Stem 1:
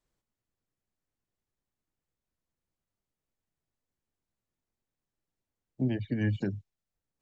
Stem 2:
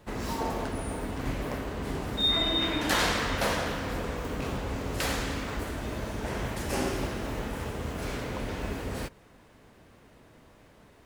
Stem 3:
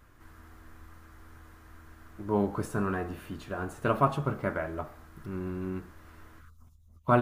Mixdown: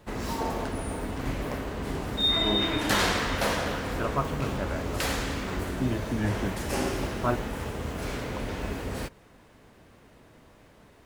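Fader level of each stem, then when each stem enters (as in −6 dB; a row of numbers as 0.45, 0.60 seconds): 0.0, +1.0, −4.0 decibels; 0.00, 0.00, 0.15 seconds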